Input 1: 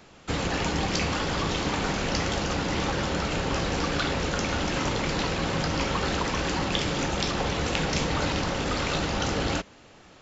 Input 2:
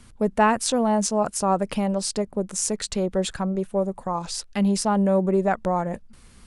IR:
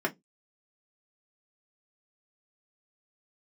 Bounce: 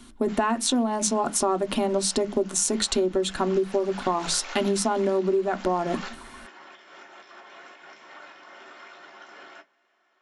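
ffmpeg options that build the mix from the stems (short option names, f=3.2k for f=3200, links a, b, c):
-filter_complex "[0:a]highpass=800,alimiter=limit=-22dB:level=0:latency=1:release=148,volume=-5.5dB,afade=t=in:st=3.17:d=0.76:silence=0.421697,asplit=2[a][b];[b]volume=-15.5dB[c];[1:a]equalizer=f=4.9k:w=5.1:g=-7,dynaudnorm=f=120:g=7:m=5.5dB,equalizer=f=125:t=o:w=1:g=-10,equalizer=f=250:t=o:w=1:g=8,equalizer=f=500:t=o:w=1:g=-4,equalizer=f=2k:t=o:w=1:g=-5,equalizer=f=4k:t=o:w=1:g=8,volume=-0.5dB,asplit=3[d][e][f];[e]volume=-10dB[g];[f]apad=whole_len=450644[h];[a][h]sidechaingate=range=-33dB:threshold=-38dB:ratio=16:detection=peak[i];[2:a]atrim=start_sample=2205[j];[c][g]amix=inputs=2:normalize=0[k];[k][j]afir=irnorm=-1:irlink=0[l];[i][d][l]amix=inputs=3:normalize=0,acompressor=threshold=-20dB:ratio=16"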